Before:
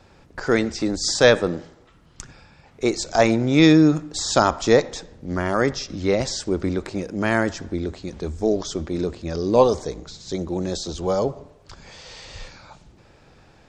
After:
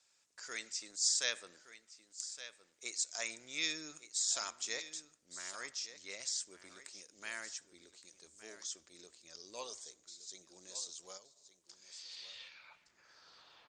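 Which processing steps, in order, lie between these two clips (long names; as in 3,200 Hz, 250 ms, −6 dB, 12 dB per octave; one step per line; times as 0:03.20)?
notch filter 800 Hz, Q 12
dynamic equaliser 2,300 Hz, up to +6 dB, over −40 dBFS, Q 1.3
0:11.17–0:12.37: downward compressor 16 to 1, threshold −28 dBFS, peak gain reduction 11.5 dB
band-pass filter sweep 7,500 Hz → 1,100 Hz, 0:11.64–0:13.46
single-tap delay 1,167 ms −13 dB
level −1.5 dB
Opus 48 kbit/s 48,000 Hz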